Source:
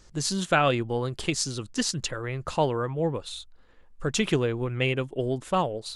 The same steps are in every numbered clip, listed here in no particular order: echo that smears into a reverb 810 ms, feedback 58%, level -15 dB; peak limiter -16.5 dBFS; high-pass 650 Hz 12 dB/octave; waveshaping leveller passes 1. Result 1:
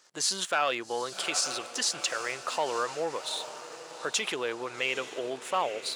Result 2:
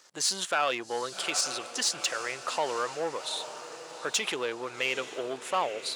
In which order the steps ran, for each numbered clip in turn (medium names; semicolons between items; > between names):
echo that smears into a reverb > waveshaping leveller > peak limiter > high-pass; echo that smears into a reverb > peak limiter > waveshaping leveller > high-pass